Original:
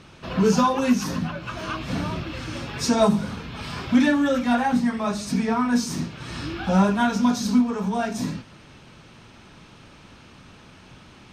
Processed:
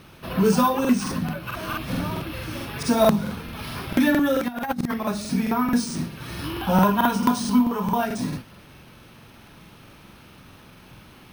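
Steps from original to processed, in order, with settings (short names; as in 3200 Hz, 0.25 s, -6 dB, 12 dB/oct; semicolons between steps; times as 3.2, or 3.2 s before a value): 4.48–4.94 negative-ratio compressor -26 dBFS, ratio -0.5; 6.44–8.04 small resonant body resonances 1000/3000 Hz, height 11 dB, ringing for 20 ms; careless resampling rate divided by 3×, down filtered, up hold; crackling interface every 0.22 s, samples 2048, repeat, from 0.8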